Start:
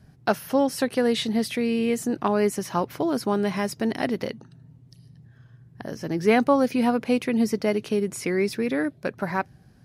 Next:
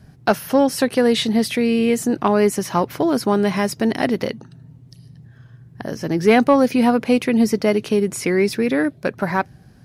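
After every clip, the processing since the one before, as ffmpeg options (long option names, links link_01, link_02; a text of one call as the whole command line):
ffmpeg -i in.wav -af "acontrast=64" out.wav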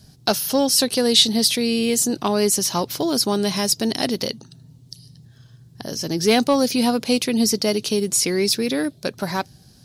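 ffmpeg -i in.wav -af "highshelf=frequency=2900:width_type=q:width=1.5:gain=12.5,volume=-3.5dB" out.wav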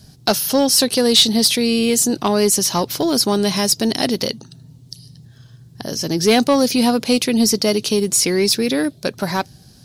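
ffmpeg -i in.wav -af "acontrast=48,volume=-2dB" out.wav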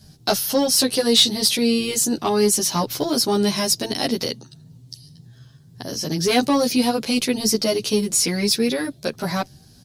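ffmpeg -i in.wav -filter_complex "[0:a]asplit=2[link_01][link_02];[link_02]adelay=11.4,afreqshift=2[link_03];[link_01][link_03]amix=inputs=2:normalize=1" out.wav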